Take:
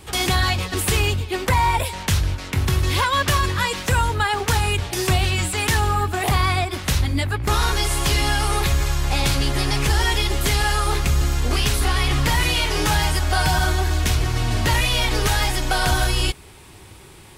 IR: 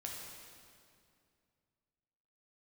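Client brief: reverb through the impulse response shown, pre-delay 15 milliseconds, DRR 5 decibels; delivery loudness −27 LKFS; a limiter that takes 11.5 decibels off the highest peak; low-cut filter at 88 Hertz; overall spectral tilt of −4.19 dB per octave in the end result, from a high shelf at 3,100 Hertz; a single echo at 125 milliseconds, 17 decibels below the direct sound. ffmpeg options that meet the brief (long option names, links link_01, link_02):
-filter_complex "[0:a]highpass=88,highshelf=frequency=3100:gain=-5,alimiter=limit=-19dB:level=0:latency=1,aecho=1:1:125:0.141,asplit=2[link_01][link_02];[1:a]atrim=start_sample=2205,adelay=15[link_03];[link_02][link_03]afir=irnorm=-1:irlink=0,volume=-4dB[link_04];[link_01][link_04]amix=inputs=2:normalize=0,volume=-0.5dB"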